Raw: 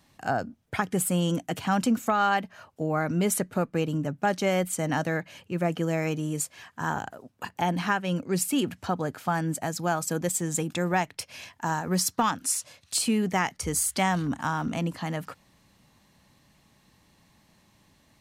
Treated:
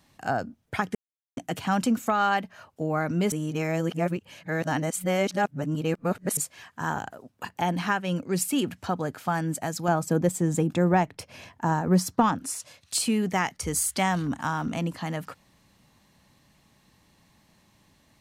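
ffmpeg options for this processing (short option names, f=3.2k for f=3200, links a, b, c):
-filter_complex "[0:a]asettb=1/sr,asplit=3[a][b][c];[a]atrim=end=9.884[d];[b]atrim=start=9.88:end=12.6,asetpts=PTS-STARTPTS,afade=t=in:d=0.004:c=qsin,afade=t=out:st=2.716:d=0.004:c=qsin,tiltshelf=f=1.3k:g=6.5[e];[c]atrim=start=12.596[f];[d][e]acrossfade=d=0.004:c1=hsin:c2=qsin[g];[g][f]acrossfade=d=0.004:c1=qsin:c2=hsin,asplit=5[h][i][j][k][l];[h]atrim=end=0.95,asetpts=PTS-STARTPTS,afade=t=out:st=0.946:d=0.004:c=hsin[m];[i]atrim=start=0.95:end=1.37,asetpts=PTS-STARTPTS,volume=0[n];[j]atrim=start=1.37:end=3.322,asetpts=PTS-STARTPTS,afade=t=in:d=0.004:c=hsin[o];[k]atrim=start=3.318:end=6.372,asetpts=PTS-STARTPTS,areverse[p];[l]atrim=start=6.368[q];[m][n][o]concat=n=3:v=0:a=1[r];[r][p]acrossfade=d=0.004:c1=hsin:c2=hsin[s];[s][q]acrossfade=d=0.004:c1=hsin:c2=hsin"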